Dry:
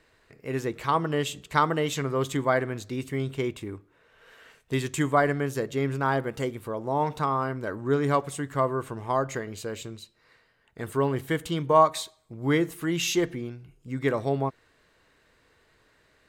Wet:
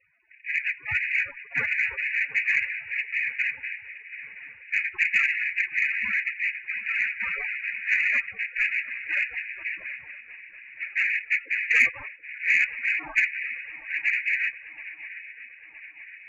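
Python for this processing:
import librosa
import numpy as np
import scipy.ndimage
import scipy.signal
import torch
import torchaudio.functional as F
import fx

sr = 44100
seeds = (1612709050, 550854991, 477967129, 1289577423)

y = fx.noise_vocoder(x, sr, seeds[0], bands=2)
y = fx.spec_topn(y, sr, count=32)
y = fx.freq_invert(y, sr, carrier_hz=2700)
y = fx.echo_swing(y, sr, ms=968, ratio=3, feedback_pct=57, wet_db=-17.0)
y = fx.cheby_harmonics(y, sr, harmonics=(4, 5), levels_db=(-36, -26), full_scale_db=-6.5)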